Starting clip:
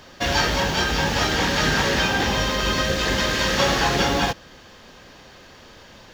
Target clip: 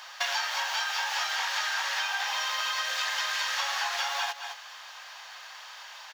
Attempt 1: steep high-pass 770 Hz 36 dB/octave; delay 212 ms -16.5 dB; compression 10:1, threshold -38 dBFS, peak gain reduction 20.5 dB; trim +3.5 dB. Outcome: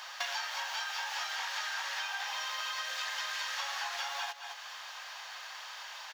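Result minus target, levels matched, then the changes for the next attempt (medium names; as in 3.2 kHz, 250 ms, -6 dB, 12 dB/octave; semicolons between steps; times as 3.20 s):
compression: peak gain reduction +7 dB
change: compression 10:1, threshold -30.5 dBFS, peak gain reduction 13.5 dB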